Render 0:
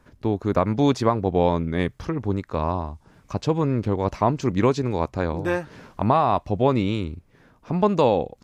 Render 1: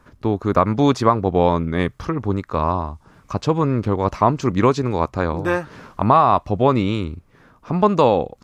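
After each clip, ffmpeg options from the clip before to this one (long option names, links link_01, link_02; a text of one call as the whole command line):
ffmpeg -i in.wav -af "equalizer=frequency=1200:width_type=o:width=0.52:gain=6.5,volume=3dB" out.wav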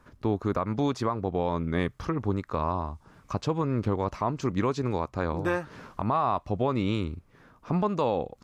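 ffmpeg -i in.wav -af "alimiter=limit=-11dB:level=0:latency=1:release=258,volume=-5dB" out.wav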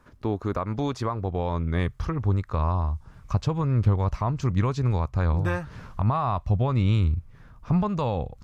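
ffmpeg -i in.wav -af "asubboost=boost=8:cutoff=110" out.wav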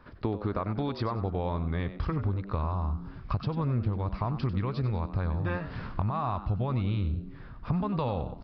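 ffmpeg -i in.wav -filter_complex "[0:a]acompressor=threshold=-30dB:ratio=6,asplit=2[link_01][link_02];[link_02]asplit=3[link_03][link_04][link_05];[link_03]adelay=95,afreqshift=98,volume=-12.5dB[link_06];[link_04]adelay=190,afreqshift=196,volume=-22.7dB[link_07];[link_05]adelay=285,afreqshift=294,volume=-32.8dB[link_08];[link_06][link_07][link_08]amix=inputs=3:normalize=0[link_09];[link_01][link_09]amix=inputs=2:normalize=0,aresample=11025,aresample=44100,volume=3.5dB" out.wav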